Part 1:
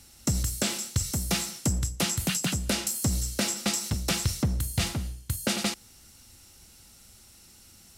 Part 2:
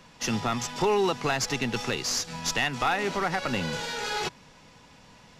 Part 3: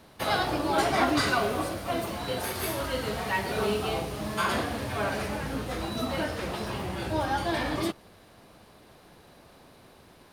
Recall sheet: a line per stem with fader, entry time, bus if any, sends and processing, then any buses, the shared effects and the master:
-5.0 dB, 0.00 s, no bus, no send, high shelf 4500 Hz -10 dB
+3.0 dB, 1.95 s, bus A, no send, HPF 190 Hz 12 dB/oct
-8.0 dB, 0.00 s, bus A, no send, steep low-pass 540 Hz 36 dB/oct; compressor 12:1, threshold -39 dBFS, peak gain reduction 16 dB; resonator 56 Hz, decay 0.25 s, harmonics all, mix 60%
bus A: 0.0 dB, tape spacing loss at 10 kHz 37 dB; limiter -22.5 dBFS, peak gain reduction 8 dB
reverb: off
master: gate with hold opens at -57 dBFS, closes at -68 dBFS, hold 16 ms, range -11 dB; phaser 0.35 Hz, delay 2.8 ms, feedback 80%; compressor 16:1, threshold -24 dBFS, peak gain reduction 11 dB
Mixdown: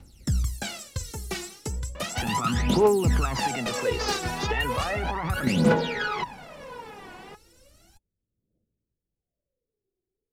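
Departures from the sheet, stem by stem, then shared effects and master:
stem 2 +3.0 dB -> +13.0 dB; stem 3 -8.0 dB -> -17.0 dB; master: missing compressor 16:1, threshold -24 dBFS, peak gain reduction 11 dB

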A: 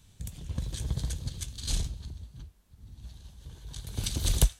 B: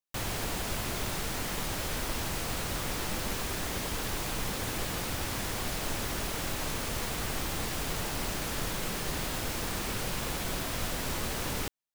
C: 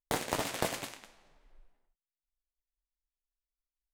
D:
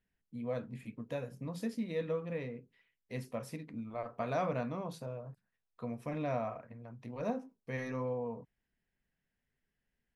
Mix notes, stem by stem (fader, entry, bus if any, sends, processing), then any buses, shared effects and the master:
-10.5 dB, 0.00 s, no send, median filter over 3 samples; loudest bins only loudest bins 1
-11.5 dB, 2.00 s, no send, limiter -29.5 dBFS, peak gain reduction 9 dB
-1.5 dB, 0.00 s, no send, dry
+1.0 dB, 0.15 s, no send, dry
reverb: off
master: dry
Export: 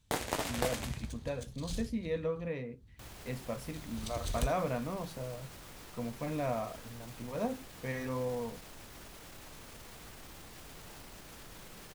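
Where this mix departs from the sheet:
stem A: missing loudest bins only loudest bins 1; stem B: entry 2.00 s -> 2.85 s

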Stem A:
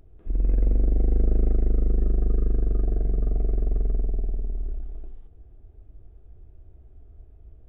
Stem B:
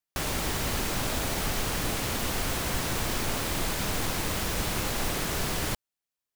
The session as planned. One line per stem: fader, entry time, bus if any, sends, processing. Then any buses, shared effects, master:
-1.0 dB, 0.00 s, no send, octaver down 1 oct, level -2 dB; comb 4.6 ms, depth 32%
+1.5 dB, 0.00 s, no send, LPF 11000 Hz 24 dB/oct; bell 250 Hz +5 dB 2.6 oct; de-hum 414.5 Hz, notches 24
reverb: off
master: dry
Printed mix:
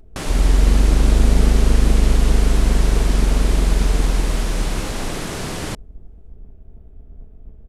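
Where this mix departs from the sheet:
stem A -1.0 dB -> +5.0 dB; stem B: missing de-hum 414.5 Hz, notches 24

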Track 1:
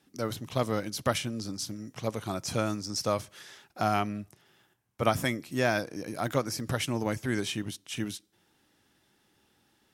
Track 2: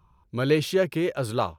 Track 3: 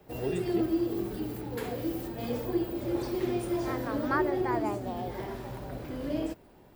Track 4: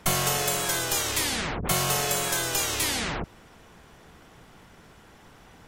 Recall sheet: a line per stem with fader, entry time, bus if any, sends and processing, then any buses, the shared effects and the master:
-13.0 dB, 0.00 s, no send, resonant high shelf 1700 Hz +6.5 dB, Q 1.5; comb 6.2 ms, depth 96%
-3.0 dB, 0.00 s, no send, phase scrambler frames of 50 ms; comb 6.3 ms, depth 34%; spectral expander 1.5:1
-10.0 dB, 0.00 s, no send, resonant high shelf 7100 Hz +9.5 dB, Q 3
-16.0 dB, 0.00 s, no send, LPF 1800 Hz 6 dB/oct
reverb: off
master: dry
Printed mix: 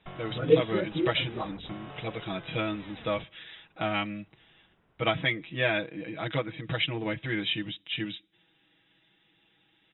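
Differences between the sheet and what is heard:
stem 1 -13.0 dB -> -4.0 dB; stem 3: muted; master: extra brick-wall FIR low-pass 3900 Hz

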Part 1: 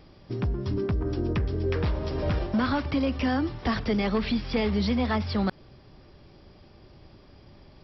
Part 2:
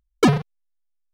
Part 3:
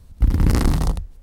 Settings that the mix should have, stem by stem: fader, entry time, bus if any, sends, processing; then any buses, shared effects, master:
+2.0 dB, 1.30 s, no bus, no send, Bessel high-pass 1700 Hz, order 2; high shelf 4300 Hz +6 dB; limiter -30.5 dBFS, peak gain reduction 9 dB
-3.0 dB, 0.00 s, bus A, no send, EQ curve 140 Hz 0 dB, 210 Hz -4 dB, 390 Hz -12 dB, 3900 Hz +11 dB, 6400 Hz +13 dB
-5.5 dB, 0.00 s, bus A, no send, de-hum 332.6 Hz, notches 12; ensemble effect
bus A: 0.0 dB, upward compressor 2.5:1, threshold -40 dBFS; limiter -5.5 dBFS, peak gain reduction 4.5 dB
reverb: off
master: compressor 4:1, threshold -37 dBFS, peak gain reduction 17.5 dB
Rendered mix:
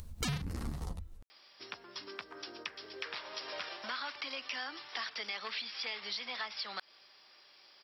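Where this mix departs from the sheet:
stem 1: missing limiter -30.5 dBFS, peak gain reduction 9 dB; stem 2 -3.0 dB -> +5.0 dB

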